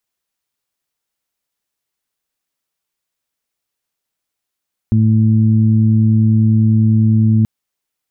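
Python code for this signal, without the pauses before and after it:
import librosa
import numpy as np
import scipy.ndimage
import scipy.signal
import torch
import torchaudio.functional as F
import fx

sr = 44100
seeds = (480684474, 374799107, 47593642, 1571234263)

y = fx.additive_steady(sr, length_s=2.53, hz=110.0, level_db=-10.0, upper_db=(-3.0, -20))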